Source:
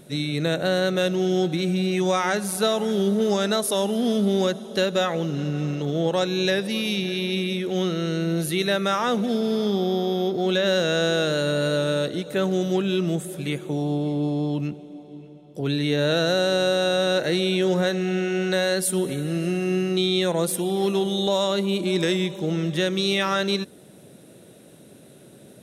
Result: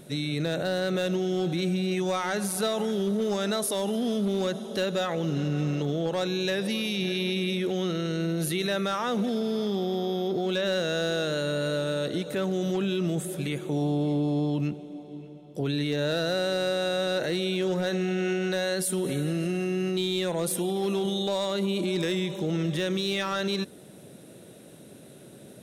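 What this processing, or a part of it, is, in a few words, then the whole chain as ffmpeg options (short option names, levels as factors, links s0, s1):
clipper into limiter: -af "asoftclip=type=hard:threshold=0.188,alimiter=limit=0.1:level=0:latency=1:release=27"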